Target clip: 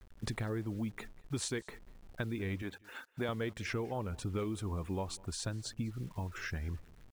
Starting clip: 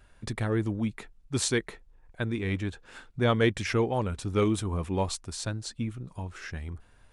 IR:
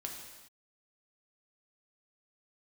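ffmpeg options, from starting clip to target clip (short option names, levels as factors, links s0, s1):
-filter_complex "[0:a]asettb=1/sr,asplit=3[s0][s1][s2];[s0]atrim=end=2.624[s3];[s1]atrim=start=2.62:end=3.29,asetpts=PTS-STARTPTS,afade=t=in:d=0.004:c=qsin,afade=t=out:st=0.666:d=0.004:c=qsin,highpass=f=330:p=1[s4];[s2]atrim=start=3.286[s5];[s3][s4]acrossfade=d=0.004:c1=hsin:c2=qsin[s6];[s6][s5]acrossfade=d=0.004:c1=qsin:c2=hsin,afftfilt=real='re*gte(hypot(re,im),0.00355)':imag='im*gte(hypot(re,im),0.00355)':win_size=1024:overlap=0.75,acompressor=threshold=0.0178:ratio=6,acrusher=bits=9:mix=0:aa=0.000001,asplit=2[s7][s8];[s8]aecho=0:1:197:0.0668[s9];[s7][s9]amix=inputs=2:normalize=0,adynamicequalizer=threshold=0.002:dfrequency=2400:dqfactor=0.7:tfrequency=2400:tqfactor=0.7:attack=5:release=100:ratio=0.375:range=2.5:mode=cutabove:tftype=highshelf,volume=1.12"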